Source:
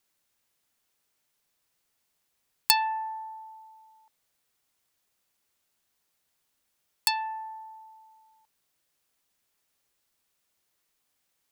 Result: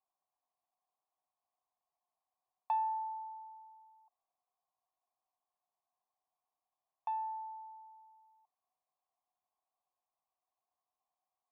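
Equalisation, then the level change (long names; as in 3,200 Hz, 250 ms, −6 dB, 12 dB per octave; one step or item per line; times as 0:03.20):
formant resonators in series a
+5.0 dB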